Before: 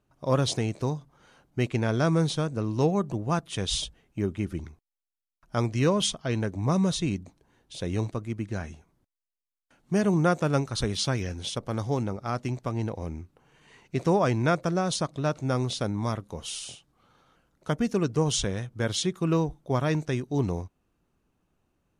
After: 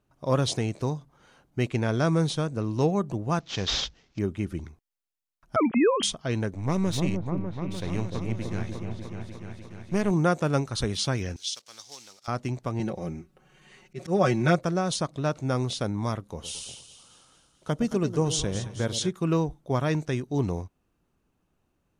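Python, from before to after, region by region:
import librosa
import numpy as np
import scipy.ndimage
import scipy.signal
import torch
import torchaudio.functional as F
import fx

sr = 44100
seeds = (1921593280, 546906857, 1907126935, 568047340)

y = fx.chain(x, sr, fx.cvsd(bps=32000),
    fx.high_shelf(hz=4100.0, db=10.5), at=(3.4, 4.19))
y = fx.chain(y, sr, fx.sine_speech(),
    fx.band_squash(depth_pct=100), at=(5.56, 6.03))
y = fx.chain(y, sr, fx.halfwave_gain(db=-7.0),
    fx.peak_eq(hz=2200.0, db=4.5, octaves=0.49),
    fx.echo_opening(ms=299, hz=750, octaves=1, feedback_pct=70, wet_db=-3), at=(6.53, 10.11))
y = fx.chain(y, sr, fx.block_float(bits=5),
    fx.bandpass_q(hz=5300.0, q=1.3),
    fx.peak_eq(hz=5500.0, db=6.0, octaves=2.0), at=(11.36, 12.28))
y = fx.chain(y, sr, fx.notch(hz=960.0, q=7.2),
    fx.comb(ms=5.4, depth=0.85),
    fx.auto_swell(attack_ms=143.0), at=(12.79, 14.59))
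y = fx.chain(y, sr, fx.dynamic_eq(hz=1800.0, q=0.97, threshold_db=-46.0, ratio=4.0, max_db=-4),
    fx.echo_split(split_hz=790.0, low_ms=112, high_ms=219, feedback_pct=52, wet_db=-11.5), at=(16.32, 19.11))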